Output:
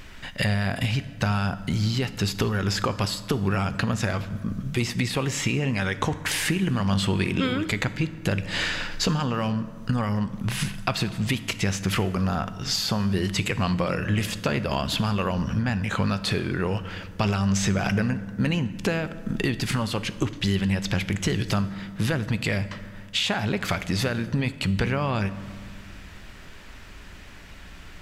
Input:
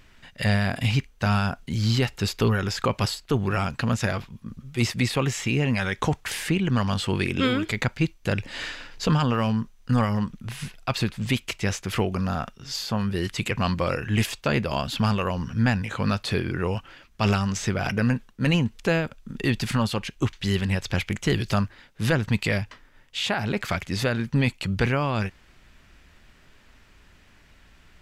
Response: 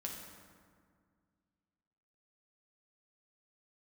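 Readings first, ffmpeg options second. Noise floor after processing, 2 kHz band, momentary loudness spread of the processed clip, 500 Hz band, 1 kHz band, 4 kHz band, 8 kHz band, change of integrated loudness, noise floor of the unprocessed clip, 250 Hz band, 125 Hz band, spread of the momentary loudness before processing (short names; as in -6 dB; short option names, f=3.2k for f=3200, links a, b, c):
-43 dBFS, 0.0 dB, 9 LU, -1.5 dB, -1.0 dB, +1.5 dB, +3.0 dB, -0.5 dB, -55 dBFS, 0.0 dB, -0.5 dB, 6 LU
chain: -filter_complex "[0:a]acompressor=threshold=-33dB:ratio=6,asplit=2[a][b];[1:a]atrim=start_sample=2205[c];[b][c]afir=irnorm=-1:irlink=0,volume=-6.5dB[d];[a][d]amix=inputs=2:normalize=0,volume=8dB"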